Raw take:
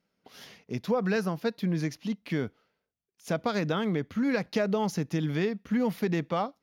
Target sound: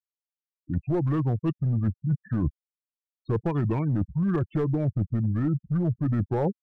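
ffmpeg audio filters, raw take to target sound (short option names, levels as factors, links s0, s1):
-af "lowpass=f=8500:w=0.5412,lowpass=f=8500:w=1.3066,adynamicequalizer=threshold=0.00224:dfrequency=6100:dqfactor=0.76:tfrequency=6100:tqfactor=0.76:attack=5:release=100:ratio=0.375:range=3:mode=cutabove:tftype=bell,afftfilt=real='re*gte(hypot(re,im),0.0282)':imag='im*gte(hypot(re,im),0.0282)':win_size=1024:overlap=0.75,acontrast=73,asetrate=31183,aresample=44100,atempo=1.41421,aeval=exprs='clip(val(0),-1,0.141)':c=same,lowshelf=f=360:g=8.5,areverse,acompressor=threshold=0.0447:ratio=12,areverse,volume=1.68"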